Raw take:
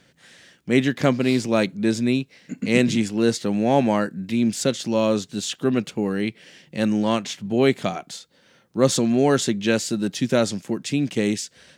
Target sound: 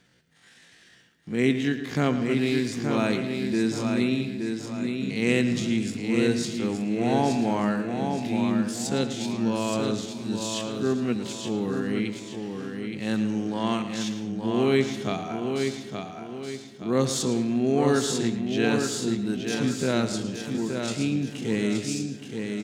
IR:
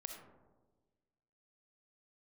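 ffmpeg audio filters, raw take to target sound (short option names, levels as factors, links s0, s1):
-filter_complex "[0:a]equalizer=f=570:w=7.8:g=-10,atempo=0.52,aecho=1:1:872|1744|2616|3488|4360:0.531|0.207|0.0807|0.0315|0.0123,asplit=2[s0][s1];[1:a]atrim=start_sample=2205,lowpass=7800,adelay=111[s2];[s1][s2]afir=irnorm=-1:irlink=0,volume=0.473[s3];[s0][s3]amix=inputs=2:normalize=0,volume=0.562"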